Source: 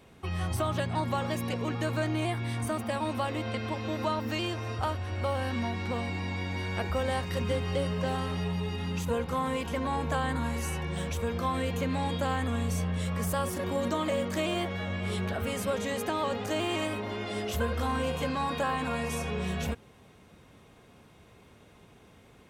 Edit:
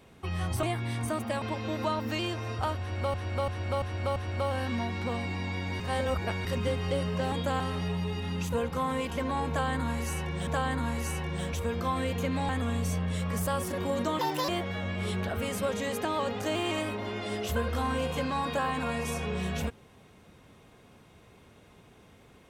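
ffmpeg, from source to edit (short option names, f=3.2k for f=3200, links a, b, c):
-filter_complex "[0:a]asplit=15[a][b][c][d][e][f][g][h][i][j][k][l][m][n][o];[a]atrim=end=0.632[p];[b]atrim=start=2.218:end=3.012[q];[c]atrim=start=3.618:end=5.342[r];[d]atrim=start=4.998:end=5.342[s];[e]atrim=start=4.998:end=5.342[t];[f]atrim=start=4.998:end=5.342[u];[g]atrim=start=4.998:end=6.642[v];[h]atrim=start=6.638:end=7.292,asetpts=PTS-STARTPTS,areverse[w];[i]atrim=start=7.288:end=8.162[x];[j]atrim=start=12.068:end=12.352[y];[k]atrim=start=8.158:end=11.032[z];[l]atrim=start=10.048:end=12.072[aa];[m]atrim=start=12.348:end=14.054[ab];[n]atrim=start=14.05:end=14.53,asetpts=PTS-STARTPTS,asetrate=71883,aresample=44100[ac];[o]atrim=start=14.526[ad];[p][q]acrossfade=d=0.004:c1=hsin:c2=hsin[ae];[ae][r]acrossfade=d=0.004:c1=hsin:c2=hsin[af];[af][s]acrossfade=d=0.004:c1=hsin:c2=hsin[ag];[ag][t]acrossfade=d=0.004:c1=hsin:c2=hsin[ah];[ah][u]acrossfade=d=0.004:c1=hsin:c2=hsin[ai];[ai][v]acrossfade=d=0.004:c1=hsin:c2=hsin[aj];[aj][w]acrossfade=d=0.004:c1=hsin:c2=hsin[ak];[ak][x]acrossfade=d=0.004:c1=hsin:c2=hsin[al];[al][y]acrossfade=d=0.004:c1=hsin:c2=hsin[am];[am][z]acrossfade=d=0.004:c1=hsin:c2=hsin[an];[an][aa]acrossfade=d=0.004:c1=hsin:c2=hsin[ao];[ao][ab]acrossfade=d=0.004:c1=hsin:c2=hsin[ap];[ap][ac]acrossfade=d=0.004:c1=hsin:c2=hsin[aq];[aq][ad]acrossfade=d=0.004:c1=hsin:c2=hsin"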